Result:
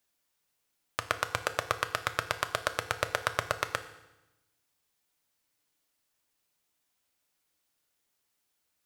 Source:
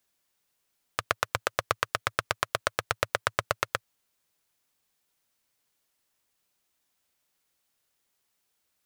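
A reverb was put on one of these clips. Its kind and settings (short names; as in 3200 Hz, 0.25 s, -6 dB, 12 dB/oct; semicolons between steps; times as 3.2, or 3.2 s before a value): FDN reverb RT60 0.97 s, low-frequency decay 1.3×, high-frequency decay 0.95×, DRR 8.5 dB; gain -2.5 dB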